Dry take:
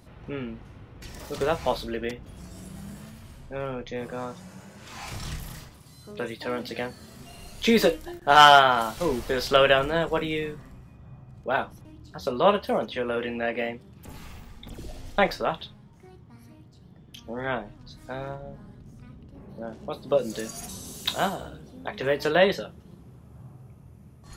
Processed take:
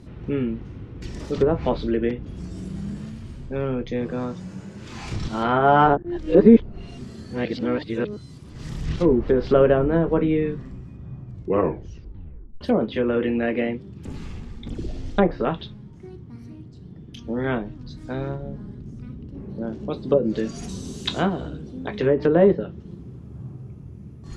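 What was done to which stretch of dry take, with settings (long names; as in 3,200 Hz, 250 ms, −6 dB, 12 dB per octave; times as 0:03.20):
0:05.28–0:08.96: reverse
0:11.25: tape stop 1.36 s
whole clip: low shelf with overshoot 490 Hz +7.5 dB, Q 1.5; treble cut that deepens with the level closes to 980 Hz, closed at −15.5 dBFS; low-pass filter 7,600 Hz 12 dB per octave; level +1.5 dB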